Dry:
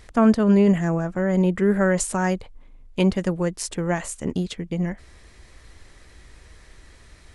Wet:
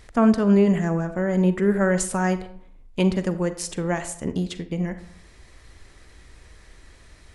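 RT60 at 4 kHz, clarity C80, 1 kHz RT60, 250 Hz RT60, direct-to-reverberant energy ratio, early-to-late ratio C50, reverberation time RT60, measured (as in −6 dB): 0.40 s, 16.0 dB, 0.65 s, 0.70 s, 11.0 dB, 12.5 dB, 0.60 s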